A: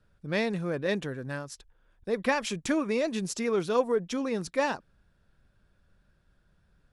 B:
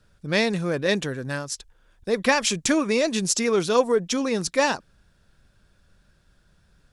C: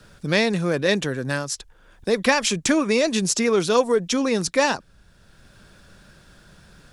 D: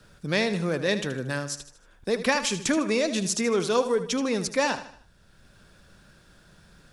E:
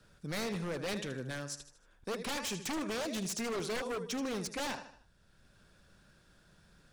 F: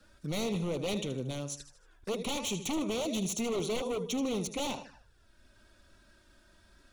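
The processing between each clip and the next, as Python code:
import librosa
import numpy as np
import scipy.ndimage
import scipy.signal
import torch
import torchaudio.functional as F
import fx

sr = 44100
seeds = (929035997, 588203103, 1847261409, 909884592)

y1 = fx.peak_eq(x, sr, hz=6600.0, db=8.5, octaves=2.0)
y1 = y1 * librosa.db_to_amplitude(5.5)
y2 = fx.band_squash(y1, sr, depth_pct=40)
y2 = y2 * librosa.db_to_amplitude(2.0)
y3 = fx.echo_feedback(y2, sr, ms=77, feedback_pct=43, wet_db=-12.0)
y3 = y3 * librosa.db_to_amplitude(-5.0)
y4 = 10.0 ** (-22.5 / 20.0) * (np.abs((y3 / 10.0 ** (-22.5 / 20.0) + 3.0) % 4.0 - 2.0) - 1.0)
y4 = y4 * librosa.db_to_amplitude(-8.5)
y5 = fx.env_flanger(y4, sr, rest_ms=3.9, full_db=-37.5)
y5 = y5 * librosa.db_to_amplitude(5.0)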